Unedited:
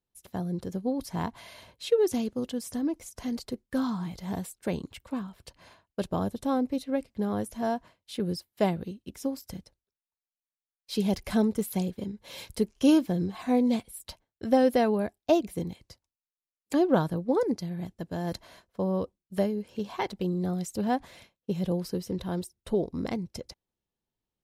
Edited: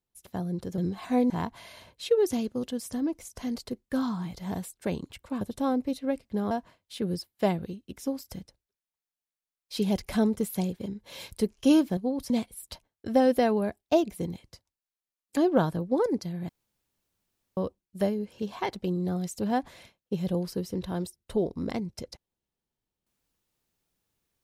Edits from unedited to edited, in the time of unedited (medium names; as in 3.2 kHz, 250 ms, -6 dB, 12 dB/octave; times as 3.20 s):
0.78–1.11 s: swap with 13.15–13.67 s
5.22–6.26 s: delete
7.36–7.69 s: delete
17.86–18.94 s: room tone